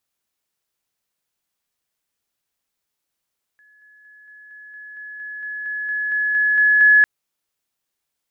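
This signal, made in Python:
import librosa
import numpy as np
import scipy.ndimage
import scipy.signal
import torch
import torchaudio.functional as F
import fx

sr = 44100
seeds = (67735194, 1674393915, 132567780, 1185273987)

y = fx.level_ladder(sr, hz=1700.0, from_db=-50.5, step_db=3.0, steps=15, dwell_s=0.23, gap_s=0.0)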